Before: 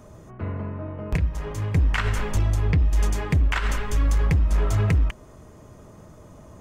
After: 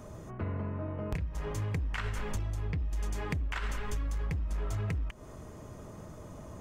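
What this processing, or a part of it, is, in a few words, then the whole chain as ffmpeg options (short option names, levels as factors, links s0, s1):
serial compression, peaks first: -af "acompressor=threshold=0.0501:ratio=6,acompressor=threshold=0.0126:ratio=1.5"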